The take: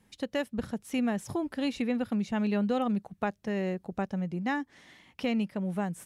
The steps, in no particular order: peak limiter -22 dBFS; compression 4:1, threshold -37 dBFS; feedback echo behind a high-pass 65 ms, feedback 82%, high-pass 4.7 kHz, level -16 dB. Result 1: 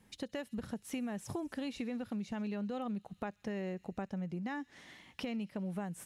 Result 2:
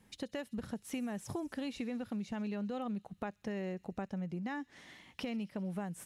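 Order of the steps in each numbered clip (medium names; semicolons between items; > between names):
peak limiter > feedback echo behind a high-pass > compression; peak limiter > compression > feedback echo behind a high-pass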